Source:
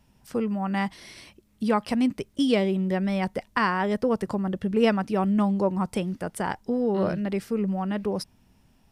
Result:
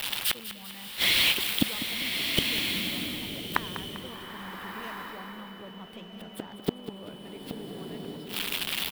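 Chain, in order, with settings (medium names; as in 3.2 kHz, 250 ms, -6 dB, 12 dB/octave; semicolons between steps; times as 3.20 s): zero-crossing glitches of -26.5 dBFS; dynamic bell 170 Hz, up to +5 dB, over -36 dBFS, Q 1; harmonic-percussive split percussive +8 dB; resonant high shelf 4.6 kHz -11.5 dB, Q 3; waveshaping leveller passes 2; in parallel at -7.5 dB: saturation -10.5 dBFS, distortion -14 dB; on the sum: inverted gate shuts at -10 dBFS, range -36 dB; feedback delay 198 ms, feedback 51%, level -12.5 dB; whistle 3 kHz -53 dBFS; swelling reverb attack 1410 ms, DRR 2.5 dB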